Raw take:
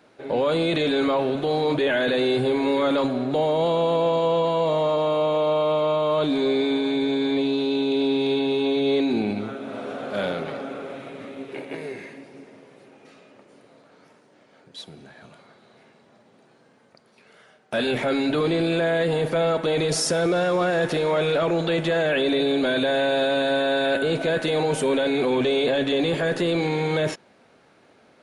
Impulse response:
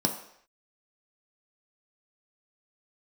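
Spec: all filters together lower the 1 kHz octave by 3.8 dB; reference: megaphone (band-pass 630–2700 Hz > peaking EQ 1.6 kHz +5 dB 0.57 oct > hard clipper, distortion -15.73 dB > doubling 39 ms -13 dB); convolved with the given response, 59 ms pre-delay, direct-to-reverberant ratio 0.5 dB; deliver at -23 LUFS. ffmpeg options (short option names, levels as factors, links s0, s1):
-filter_complex "[0:a]equalizer=f=1000:t=o:g=-4.5,asplit=2[s0][s1];[1:a]atrim=start_sample=2205,adelay=59[s2];[s1][s2]afir=irnorm=-1:irlink=0,volume=0.355[s3];[s0][s3]amix=inputs=2:normalize=0,highpass=630,lowpass=2700,equalizer=f=1600:t=o:w=0.57:g=5,asoftclip=type=hard:threshold=0.106,asplit=2[s4][s5];[s5]adelay=39,volume=0.224[s6];[s4][s6]amix=inputs=2:normalize=0,volume=1.26"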